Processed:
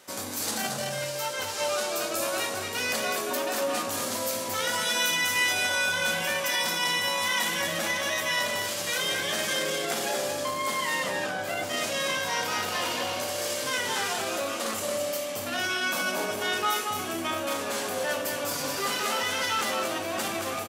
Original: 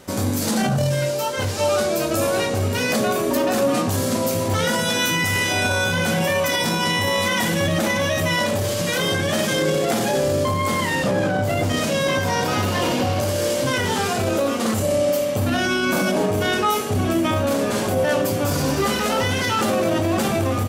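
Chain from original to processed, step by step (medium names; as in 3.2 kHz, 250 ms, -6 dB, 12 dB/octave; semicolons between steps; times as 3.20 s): high-pass 1.1 kHz 6 dB/octave; on a send: delay 226 ms -5 dB; on the sum: trim -4 dB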